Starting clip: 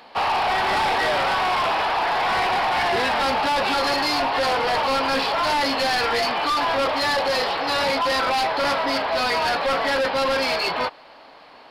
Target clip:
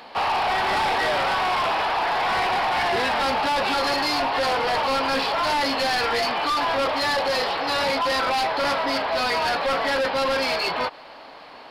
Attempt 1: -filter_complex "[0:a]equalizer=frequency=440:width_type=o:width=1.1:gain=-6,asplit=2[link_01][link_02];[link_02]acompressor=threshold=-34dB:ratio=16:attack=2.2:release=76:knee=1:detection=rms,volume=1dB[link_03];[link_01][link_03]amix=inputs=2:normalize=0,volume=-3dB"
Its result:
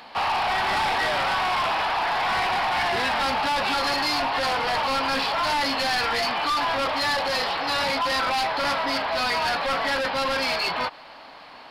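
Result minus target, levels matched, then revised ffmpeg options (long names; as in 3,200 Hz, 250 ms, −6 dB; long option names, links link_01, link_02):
500 Hz band −3.0 dB
-filter_complex "[0:a]asplit=2[link_01][link_02];[link_02]acompressor=threshold=-34dB:ratio=16:attack=2.2:release=76:knee=1:detection=rms,volume=1dB[link_03];[link_01][link_03]amix=inputs=2:normalize=0,volume=-3dB"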